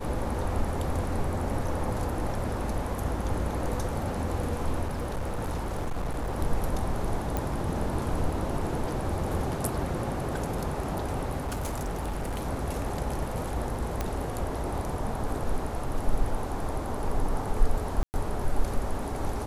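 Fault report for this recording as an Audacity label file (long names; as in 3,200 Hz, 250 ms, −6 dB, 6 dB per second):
4.860000	6.370000	clipping −26.5 dBFS
7.370000	7.370000	click
11.370000	12.470000	clipping −27.5 dBFS
14.010000	14.010000	click −15 dBFS
18.030000	18.140000	drop-out 109 ms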